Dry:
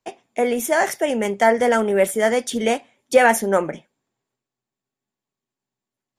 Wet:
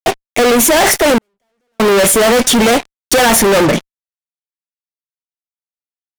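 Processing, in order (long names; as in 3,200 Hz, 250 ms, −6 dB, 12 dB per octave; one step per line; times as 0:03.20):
fuzz pedal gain 38 dB, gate −44 dBFS
0:01.18–0:01.80: noise gate −4 dBFS, range −57 dB
level +4.5 dB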